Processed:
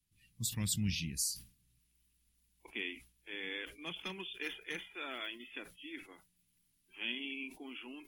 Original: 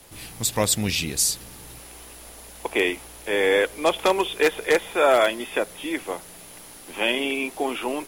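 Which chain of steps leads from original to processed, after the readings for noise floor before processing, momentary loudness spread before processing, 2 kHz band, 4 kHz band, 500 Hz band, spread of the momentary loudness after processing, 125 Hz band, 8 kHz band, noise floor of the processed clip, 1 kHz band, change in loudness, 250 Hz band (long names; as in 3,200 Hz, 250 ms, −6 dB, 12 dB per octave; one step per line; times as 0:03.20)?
−44 dBFS, 21 LU, −16.5 dB, −13.5 dB, −29.5 dB, 13 LU, −7.0 dB, −14.0 dB, −76 dBFS, −27.0 dB, −17.0 dB, −14.5 dB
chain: drawn EQ curve 190 Hz 0 dB, 570 Hz −29 dB, 2,700 Hz −7 dB
noise reduction from a noise print of the clip's start 21 dB
level that may fall only so fast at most 140 dB per second
level −6.5 dB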